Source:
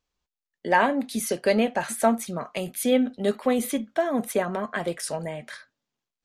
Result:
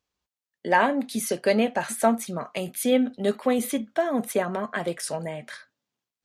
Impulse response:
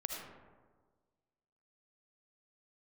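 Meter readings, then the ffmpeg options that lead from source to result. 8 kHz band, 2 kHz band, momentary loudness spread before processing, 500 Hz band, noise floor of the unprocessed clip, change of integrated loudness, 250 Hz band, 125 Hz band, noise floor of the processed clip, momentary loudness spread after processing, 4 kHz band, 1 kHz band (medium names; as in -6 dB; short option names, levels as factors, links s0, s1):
0.0 dB, 0.0 dB, 10 LU, 0.0 dB, under -85 dBFS, 0.0 dB, 0.0 dB, 0.0 dB, under -85 dBFS, 10 LU, 0.0 dB, 0.0 dB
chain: -af "highpass=62"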